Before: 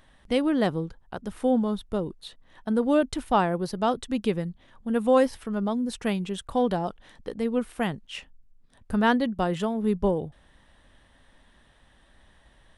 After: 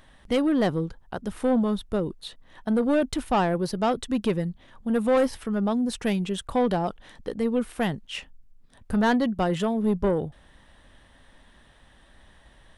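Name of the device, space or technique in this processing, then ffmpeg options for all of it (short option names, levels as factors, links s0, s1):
saturation between pre-emphasis and de-emphasis: -af "highshelf=f=3700:g=7,asoftclip=type=tanh:threshold=0.106,highshelf=f=3700:g=-7,volume=1.5"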